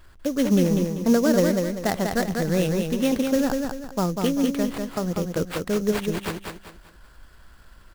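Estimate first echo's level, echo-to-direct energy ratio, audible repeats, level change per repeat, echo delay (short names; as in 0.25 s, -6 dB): -4.5 dB, -4.0 dB, 4, -9.0 dB, 0.195 s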